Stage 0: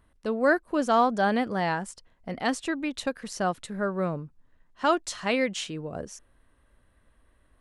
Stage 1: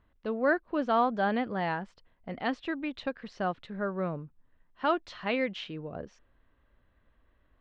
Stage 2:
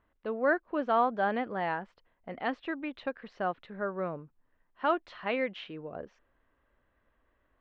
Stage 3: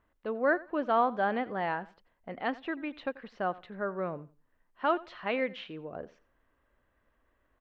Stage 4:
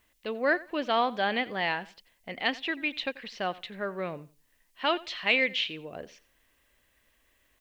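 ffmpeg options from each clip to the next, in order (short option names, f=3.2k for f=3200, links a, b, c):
-af "lowpass=f=3.8k:w=0.5412,lowpass=f=3.8k:w=1.3066,volume=-4dB"
-af "bass=f=250:g=-8,treble=f=4k:g=-14"
-af "aecho=1:1:88|176:0.1|0.022"
-af "aexciter=amount=5.7:drive=5.8:freq=2k"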